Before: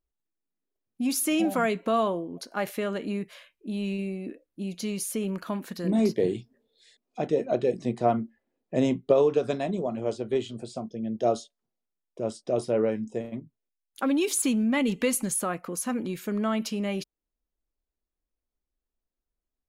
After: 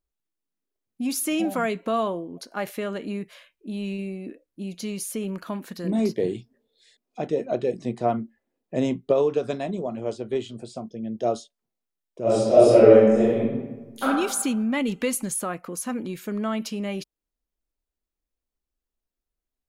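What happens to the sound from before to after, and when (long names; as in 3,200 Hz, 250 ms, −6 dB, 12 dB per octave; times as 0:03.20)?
0:12.22–0:14.03: thrown reverb, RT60 1.2 s, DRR −12 dB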